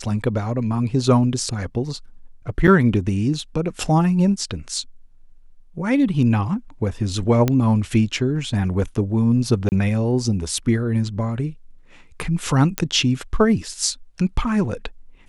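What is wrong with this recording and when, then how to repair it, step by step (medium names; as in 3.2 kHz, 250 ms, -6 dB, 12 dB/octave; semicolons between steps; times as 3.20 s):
2.67–2.68 s: dropout 7.2 ms
7.48 s: pop -6 dBFS
9.69–9.72 s: dropout 29 ms
12.78 s: pop -4 dBFS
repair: de-click; interpolate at 2.67 s, 7.2 ms; interpolate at 9.69 s, 29 ms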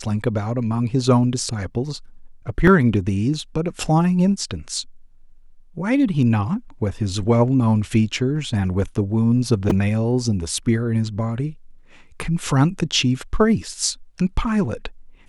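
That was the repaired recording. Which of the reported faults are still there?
nothing left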